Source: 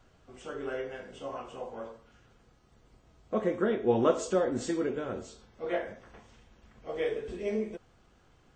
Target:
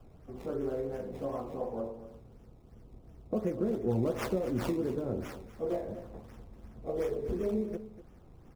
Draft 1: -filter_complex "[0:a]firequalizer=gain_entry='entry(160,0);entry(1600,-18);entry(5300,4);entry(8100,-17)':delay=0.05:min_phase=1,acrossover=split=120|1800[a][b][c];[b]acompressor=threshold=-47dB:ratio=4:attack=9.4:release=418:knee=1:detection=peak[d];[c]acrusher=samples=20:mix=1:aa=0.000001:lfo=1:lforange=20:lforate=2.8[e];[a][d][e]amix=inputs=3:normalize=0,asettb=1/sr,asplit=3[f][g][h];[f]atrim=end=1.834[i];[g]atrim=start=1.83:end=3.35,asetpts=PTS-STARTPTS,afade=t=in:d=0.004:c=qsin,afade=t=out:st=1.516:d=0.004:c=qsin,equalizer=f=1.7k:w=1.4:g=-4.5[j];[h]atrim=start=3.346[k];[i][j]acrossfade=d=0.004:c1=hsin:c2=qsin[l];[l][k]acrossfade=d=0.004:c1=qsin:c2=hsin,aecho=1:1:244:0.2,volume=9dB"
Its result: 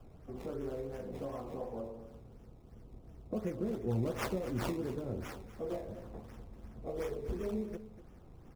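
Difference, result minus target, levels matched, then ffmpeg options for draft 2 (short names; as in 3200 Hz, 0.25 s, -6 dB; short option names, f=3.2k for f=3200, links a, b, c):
compressor: peak gain reduction +6 dB
-filter_complex "[0:a]firequalizer=gain_entry='entry(160,0);entry(1600,-18);entry(5300,4);entry(8100,-17)':delay=0.05:min_phase=1,acrossover=split=120|1800[a][b][c];[b]acompressor=threshold=-39dB:ratio=4:attack=9.4:release=418:knee=1:detection=peak[d];[c]acrusher=samples=20:mix=1:aa=0.000001:lfo=1:lforange=20:lforate=2.8[e];[a][d][e]amix=inputs=3:normalize=0,asettb=1/sr,asplit=3[f][g][h];[f]atrim=end=1.834[i];[g]atrim=start=1.83:end=3.35,asetpts=PTS-STARTPTS,afade=t=in:d=0.004:c=qsin,afade=t=out:st=1.516:d=0.004:c=qsin,equalizer=f=1.7k:w=1.4:g=-4.5[j];[h]atrim=start=3.346[k];[i][j]acrossfade=d=0.004:c1=hsin:c2=qsin[l];[l][k]acrossfade=d=0.004:c1=qsin:c2=hsin,aecho=1:1:244:0.2,volume=9dB"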